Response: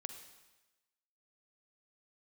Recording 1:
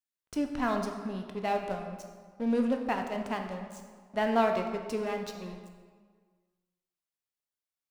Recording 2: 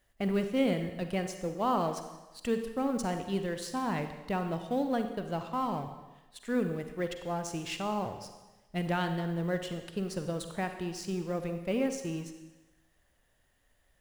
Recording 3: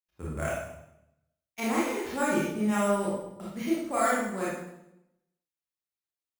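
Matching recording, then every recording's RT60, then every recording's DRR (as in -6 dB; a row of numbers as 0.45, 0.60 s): 2; 1.7, 1.1, 0.85 s; 3.5, 7.0, -7.5 dB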